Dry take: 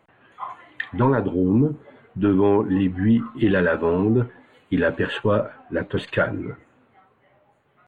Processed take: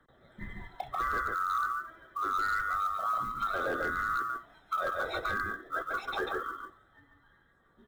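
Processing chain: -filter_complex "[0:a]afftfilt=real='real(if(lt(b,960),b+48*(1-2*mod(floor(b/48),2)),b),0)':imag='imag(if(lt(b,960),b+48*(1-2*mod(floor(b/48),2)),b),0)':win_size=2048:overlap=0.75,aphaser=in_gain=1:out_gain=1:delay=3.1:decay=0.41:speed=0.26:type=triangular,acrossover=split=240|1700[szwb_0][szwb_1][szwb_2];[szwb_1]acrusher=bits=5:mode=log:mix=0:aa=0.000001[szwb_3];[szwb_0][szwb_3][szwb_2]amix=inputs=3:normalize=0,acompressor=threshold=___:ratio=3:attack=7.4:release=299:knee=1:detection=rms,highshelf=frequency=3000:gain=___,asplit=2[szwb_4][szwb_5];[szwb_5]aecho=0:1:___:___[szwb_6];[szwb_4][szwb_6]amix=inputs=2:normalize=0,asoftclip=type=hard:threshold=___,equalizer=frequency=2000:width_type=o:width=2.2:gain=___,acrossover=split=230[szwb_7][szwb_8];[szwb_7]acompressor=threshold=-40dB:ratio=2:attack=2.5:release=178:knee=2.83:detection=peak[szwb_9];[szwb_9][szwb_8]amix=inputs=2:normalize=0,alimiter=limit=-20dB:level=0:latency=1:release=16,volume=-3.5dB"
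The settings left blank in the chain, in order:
-20dB, -6.5, 142, 0.631, -16.5dB, -5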